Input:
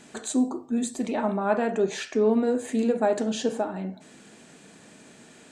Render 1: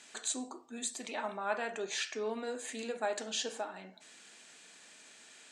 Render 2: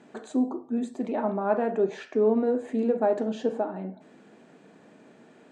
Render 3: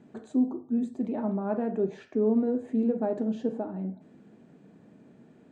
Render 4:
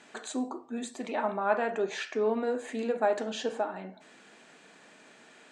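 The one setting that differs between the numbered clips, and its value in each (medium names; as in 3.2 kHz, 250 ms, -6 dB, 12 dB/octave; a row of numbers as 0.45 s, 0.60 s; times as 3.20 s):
band-pass filter, frequency: 4.4 kHz, 480 Hz, 150 Hz, 1.5 kHz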